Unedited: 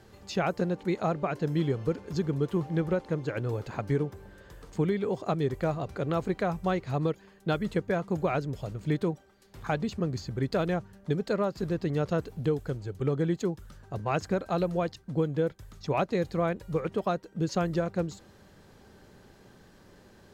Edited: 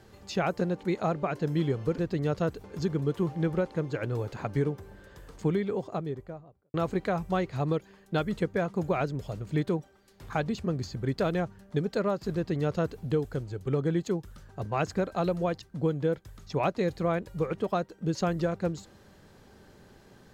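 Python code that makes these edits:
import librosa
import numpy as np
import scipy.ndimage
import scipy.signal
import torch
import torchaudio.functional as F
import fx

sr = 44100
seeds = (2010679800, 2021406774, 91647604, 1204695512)

y = fx.studio_fade_out(x, sr, start_s=4.79, length_s=1.29)
y = fx.edit(y, sr, fx.duplicate(start_s=11.69, length_s=0.66, to_s=1.98), tone=tone)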